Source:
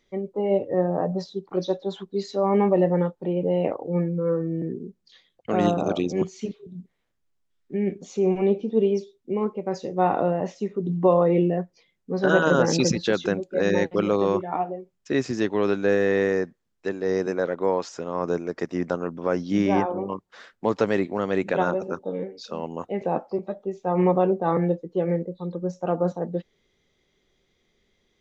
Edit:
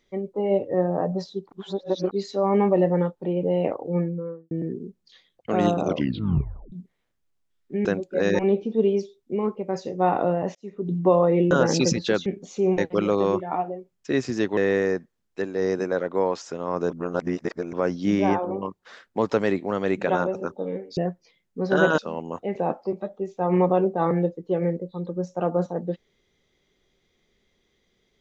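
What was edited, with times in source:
1.52–2.11 s: reverse
3.94–4.51 s: studio fade out
5.85 s: tape stop 0.87 s
7.85–8.37 s: swap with 13.25–13.79 s
10.53–10.88 s: fade in linear
11.49–12.50 s: move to 22.44 s
15.58–16.04 s: delete
18.37–19.20 s: reverse

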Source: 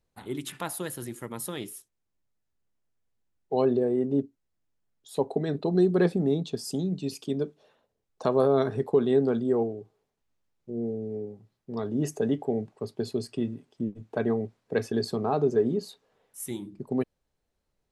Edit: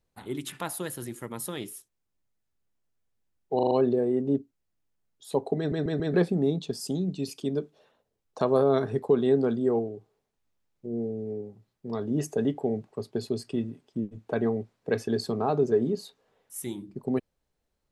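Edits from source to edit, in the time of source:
3.55 s: stutter 0.04 s, 5 plays
5.42 s: stutter in place 0.14 s, 4 plays

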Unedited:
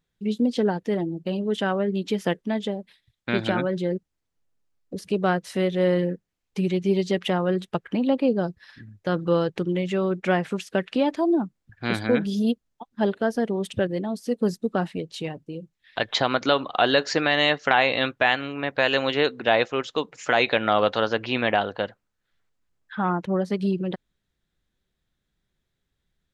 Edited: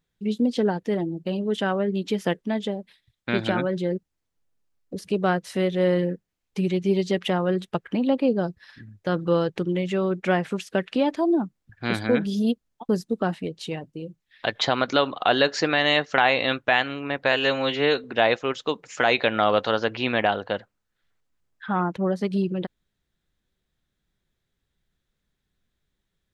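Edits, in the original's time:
12.89–14.42 s: delete
18.85–19.33 s: stretch 1.5×

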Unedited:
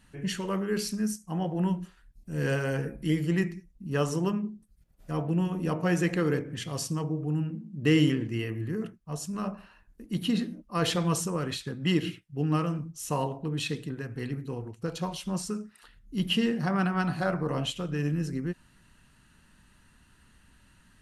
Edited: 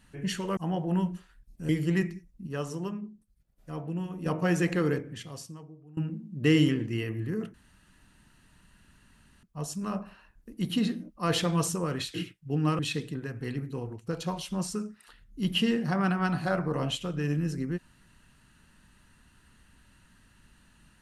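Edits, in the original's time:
0.57–1.25 s: delete
2.37–3.10 s: delete
3.88–5.67 s: gain -6.5 dB
6.28–7.38 s: fade out quadratic, to -22.5 dB
8.95 s: insert room tone 1.89 s
11.66–12.01 s: delete
12.66–13.54 s: delete

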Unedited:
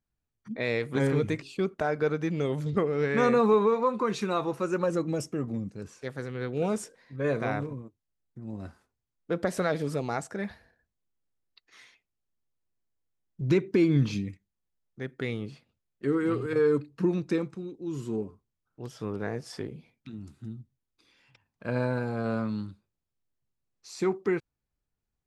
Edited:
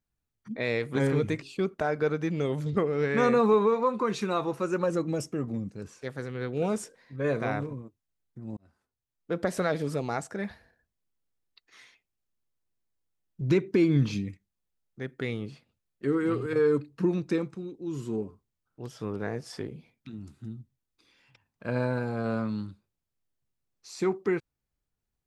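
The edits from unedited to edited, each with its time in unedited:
8.57–9.43 s: fade in

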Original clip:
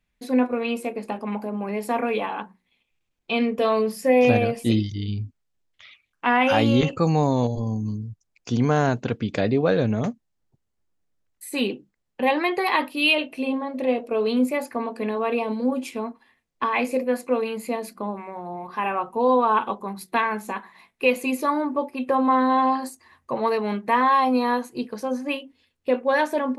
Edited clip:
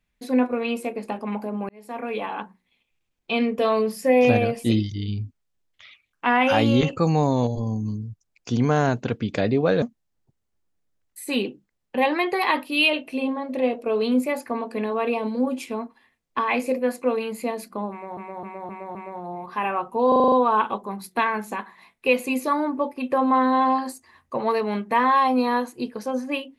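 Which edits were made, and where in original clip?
1.69–2.40 s: fade in linear
9.82–10.07 s: delete
18.16–18.42 s: loop, 5 plays
19.29 s: stutter 0.04 s, 7 plays

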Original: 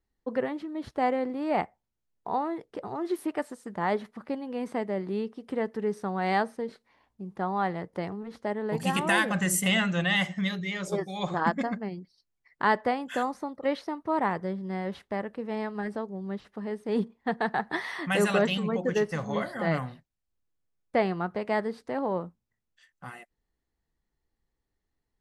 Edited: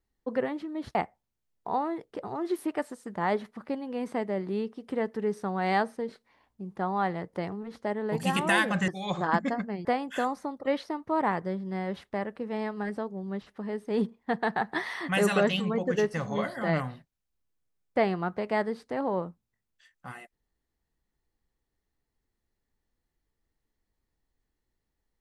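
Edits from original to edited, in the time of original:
0.95–1.55 s: delete
9.48–11.01 s: delete
11.98–12.83 s: delete

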